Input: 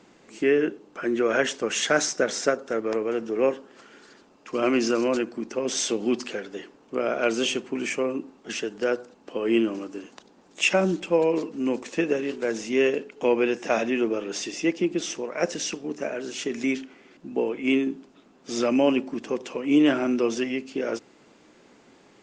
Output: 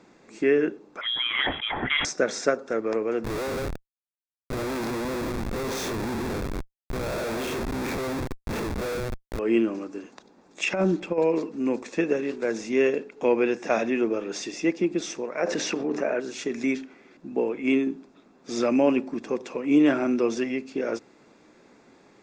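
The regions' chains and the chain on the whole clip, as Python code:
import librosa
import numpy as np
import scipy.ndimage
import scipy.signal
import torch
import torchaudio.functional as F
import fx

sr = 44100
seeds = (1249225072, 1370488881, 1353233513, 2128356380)

y = fx.chain(x, sr, fx.freq_invert(carrier_hz=3600),
    fx.sustainer(db_per_s=78.0), at=(1.01, 2.05))
y = fx.chain(y, sr, fx.spec_blur(span_ms=100.0),
    fx.echo_tape(ms=147, feedback_pct=40, wet_db=-8.5, lp_hz=2400.0, drive_db=11.0, wow_cents=26),
    fx.schmitt(flips_db=-32.5), at=(3.24, 9.39))
y = fx.chain(y, sr, fx.high_shelf(hz=6100.0, db=-9.5),
    fx.over_compress(threshold_db=-22.0, ratio=-0.5), at=(10.63, 11.18))
y = fx.chain(y, sr, fx.lowpass(hz=1700.0, slope=6),
    fx.low_shelf(hz=240.0, db=-10.5),
    fx.env_flatten(amount_pct=70), at=(15.39, 16.2))
y = fx.high_shelf(y, sr, hz=5200.0, db=-5.0)
y = fx.notch(y, sr, hz=3000.0, q=6.2)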